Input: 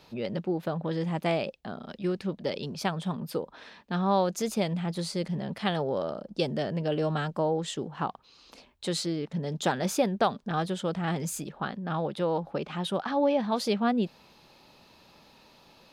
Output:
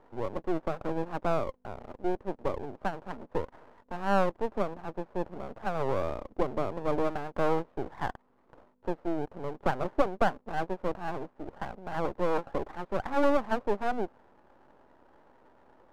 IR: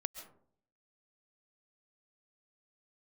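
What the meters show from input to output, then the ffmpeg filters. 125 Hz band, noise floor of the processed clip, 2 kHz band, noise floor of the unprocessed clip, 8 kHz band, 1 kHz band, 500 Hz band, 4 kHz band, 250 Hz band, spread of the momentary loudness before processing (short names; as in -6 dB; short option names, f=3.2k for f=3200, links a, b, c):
-8.0 dB, -66 dBFS, -1.0 dB, -59 dBFS, under -15 dB, -0.5 dB, -1.0 dB, -13.0 dB, -5.0 dB, 8 LU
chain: -af "aeval=exprs='val(0)+0.00282*(sin(2*PI*50*n/s)+sin(2*PI*2*50*n/s)/2+sin(2*PI*3*50*n/s)/3+sin(2*PI*4*50*n/s)/4+sin(2*PI*5*50*n/s)/5)':c=same,asuperpass=centerf=530:order=8:qfactor=0.71,aeval=exprs='max(val(0),0)':c=same,volume=5dB"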